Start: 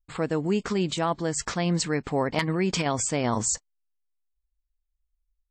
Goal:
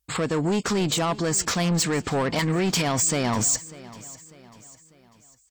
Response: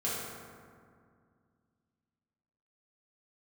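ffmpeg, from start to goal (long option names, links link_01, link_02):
-filter_complex "[0:a]highpass=frequency=54:width=0.5412,highpass=frequency=54:width=1.3066,aemphasis=mode=production:type=cd,asplit=2[link_01][link_02];[link_02]alimiter=limit=-23.5dB:level=0:latency=1:release=74,volume=-1dB[link_03];[link_01][link_03]amix=inputs=2:normalize=0,asoftclip=type=tanh:threshold=-23dB,aecho=1:1:596|1192|1788|2384:0.112|0.0505|0.0227|0.0102,volume=4dB"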